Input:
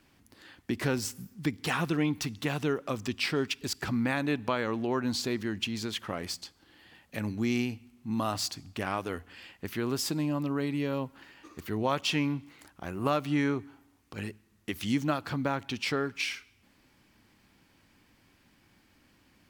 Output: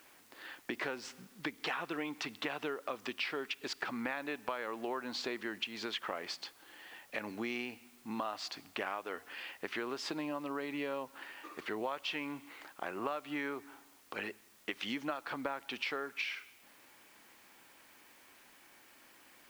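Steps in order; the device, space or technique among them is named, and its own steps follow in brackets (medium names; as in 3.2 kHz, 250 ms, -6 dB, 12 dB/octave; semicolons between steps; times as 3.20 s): baby monitor (band-pass 490–3100 Hz; compression, threshold -41 dBFS, peak gain reduction 15.5 dB; white noise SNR 23 dB); trim +6 dB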